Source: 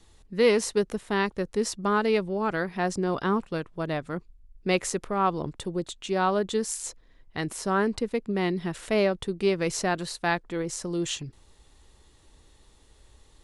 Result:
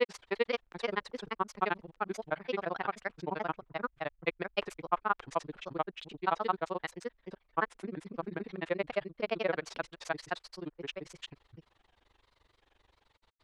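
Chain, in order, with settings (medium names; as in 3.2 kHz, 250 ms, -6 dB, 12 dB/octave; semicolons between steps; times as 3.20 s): three-band isolator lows -12 dB, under 540 Hz, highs -23 dB, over 3.8 kHz; granulator 48 ms, grains 23 per s, spray 546 ms, pitch spread up and down by 3 st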